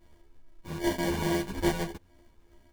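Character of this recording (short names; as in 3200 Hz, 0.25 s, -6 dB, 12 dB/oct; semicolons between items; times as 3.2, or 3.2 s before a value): a buzz of ramps at a fixed pitch in blocks of 128 samples; phasing stages 6, 2.4 Hz, lowest notch 550–4400 Hz; aliases and images of a low sample rate 1300 Hz, jitter 0%; a shimmering, thickened sound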